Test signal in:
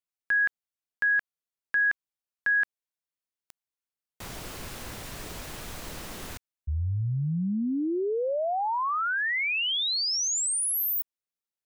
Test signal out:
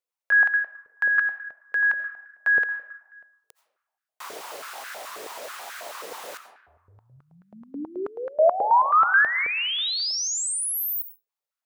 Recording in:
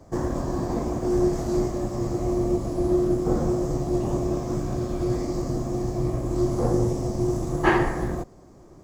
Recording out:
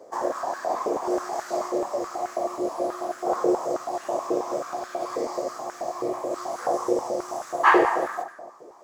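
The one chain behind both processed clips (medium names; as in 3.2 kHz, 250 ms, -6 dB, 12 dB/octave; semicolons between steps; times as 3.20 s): algorithmic reverb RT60 1.3 s, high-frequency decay 0.4×, pre-delay 45 ms, DRR 8.5 dB; step-sequenced high-pass 9.3 Hz 470–1500 Hz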